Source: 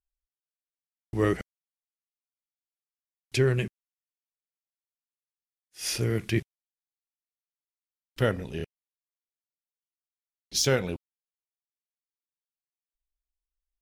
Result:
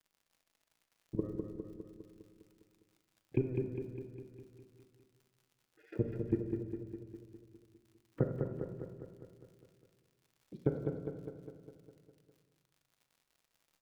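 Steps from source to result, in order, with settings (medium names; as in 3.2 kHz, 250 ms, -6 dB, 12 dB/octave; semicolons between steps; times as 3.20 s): companding laws mixed up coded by A; high-pass 140 Hz 12 dB/octave; spectral gate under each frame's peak -20 dB strong; low-pass 1.1 kHz 24 dB/octave; peaking EQ 800 Hz -9 dB 0.76 oct; compression 6:1, threshold -40 dBFS, peak gain reduction 17.5 dB; transient shaper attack +3 dB, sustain -12 dB; level held to a coarse grid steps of 19 dB; crackle 58 per s -67 dBFS; feedback delay 203 ms, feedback 59%, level -5 dB; reverberation RT60 1.1 s, pre-delay 6 ms, DRR 7 dB; trim +11 dB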